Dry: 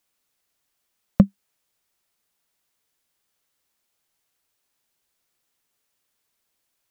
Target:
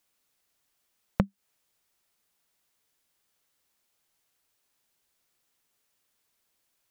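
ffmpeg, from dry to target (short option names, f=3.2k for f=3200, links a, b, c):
-af "acompressor=threshold=-22dB:ratio=6"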